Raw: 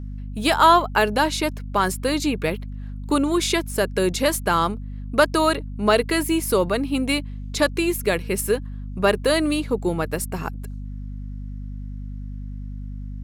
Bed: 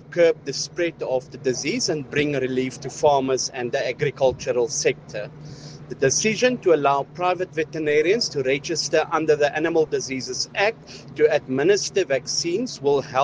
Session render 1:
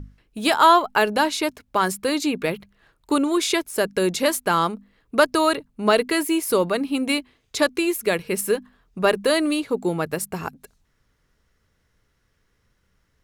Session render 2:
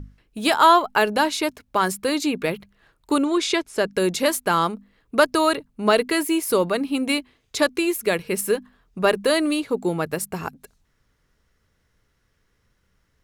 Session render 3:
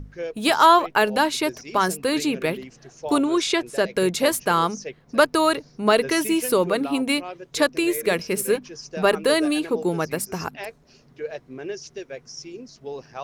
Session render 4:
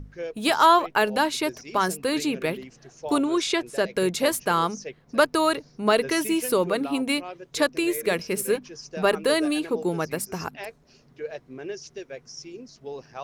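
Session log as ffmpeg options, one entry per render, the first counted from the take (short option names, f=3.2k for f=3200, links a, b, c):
-af "bandreject=f=50:t=h:w=6,bandreject=f=100:t=h:w=6,bandreject=f=150:t=h:w=6,bandreject=f=200:t=h:w=6,bandreject=f=250:t=h:w=6"
-filter_complex "[0:a]asettb=1/sr,asplit=3[a][b][c];[a]atrim=end=3.244[d];[b]atrim=start=3.24:end=3.92,asetpts=PTS-STARTPTS,afade=t=in:d=0.004:c=qsin,afade=t=out:st=0.676:d=0.004:c=qsin,lowpass=6.8k[e];[c]atrim=start=3.916[f];[d][e]acrossfade=d=0.004:c1=hsin:c2=qsin[g];[g][f]acrossfade=d=0.004:c1=qsin:c2=hsin"
-filter_complex "[1:a]volume=-14.5dB[a];[0:a][a]amix=inputs=2:normalize=0"
-af "volume=-2.5dB"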